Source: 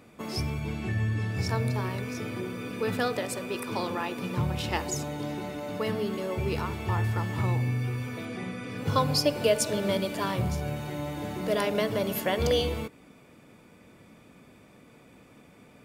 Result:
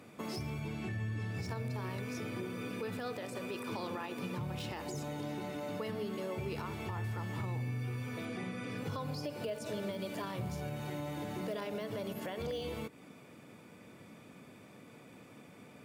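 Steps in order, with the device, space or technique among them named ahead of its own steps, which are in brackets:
podcast mastering chain (high-pass filter 90 Hz 24 dB per octave; de-essing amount 90%; downward compressor 2.5 to 1, threshold −38 dBFS, peak gain reduction 12 dB; brickwall limiter −29 dBFS, peak gain reduction 6 dB; MP3 112 kbit/s 48,000 Hz)

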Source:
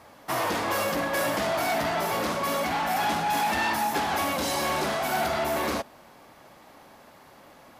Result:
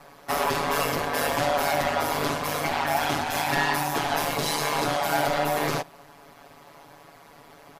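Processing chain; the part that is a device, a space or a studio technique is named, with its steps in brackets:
ring-modulated robot voice (ring modulation 76 Hz; comb filter 7.1 ms, depth 89%)
level +2.5 dB

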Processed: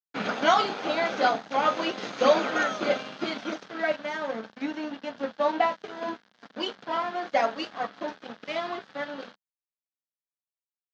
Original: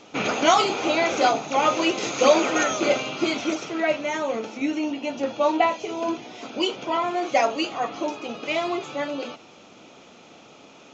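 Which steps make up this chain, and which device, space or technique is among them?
blown loudspeaker (dead-zone distortion −34 dBFS; loudspeaker in its box 170–4,900 Hz, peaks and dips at 200 Hz +8 dB, 350 Hz −6 dB, 1,600 Hz +7 dB, 2,500 Hz −7 dB)
level −2.5 dB

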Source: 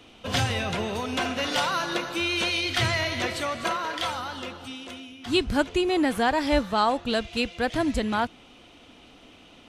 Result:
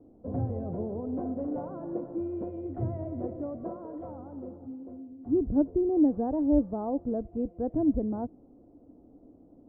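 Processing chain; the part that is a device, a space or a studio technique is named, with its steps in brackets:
under water (low-pass filter 610 Hz 24 dB per octave; parametric band 290 Hz +7 dB 0.35 octaves)
level −3.5 dB

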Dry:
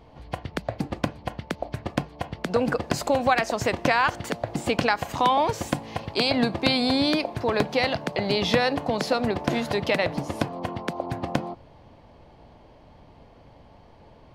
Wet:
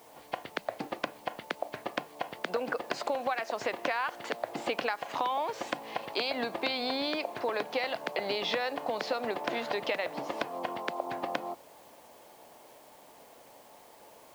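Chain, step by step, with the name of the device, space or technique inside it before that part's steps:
baby monitor (band-pass filter 420–4,200 Hz; downward compressor, threshold −28 dBFS, peak gain reduction 12 dB; white noise bed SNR 26 dB)

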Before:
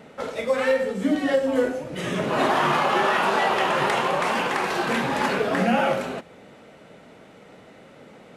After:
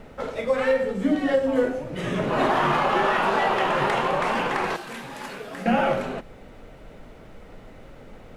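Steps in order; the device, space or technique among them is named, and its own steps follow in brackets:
car interior (parametric band 110 Hz +4 dB 0.75 octaves; high-shelf EQ 3,700 Hz −7.5 dB; brown noise bed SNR 21 dB)
0:04.76–0:05.66: first-order pre-emphasis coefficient 0.8

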